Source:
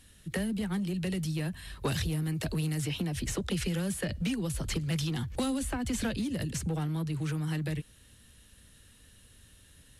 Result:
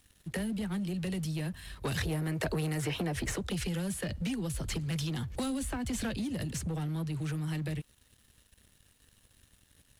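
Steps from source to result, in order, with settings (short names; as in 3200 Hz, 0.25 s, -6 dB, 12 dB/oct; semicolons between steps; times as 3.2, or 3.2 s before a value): soft clip -27 dBFS, distortion -18 dB; 1.97–3.36 band shelf 870 Hz +8 dB 2.9 oct; crossover distortion -58.5 dBFS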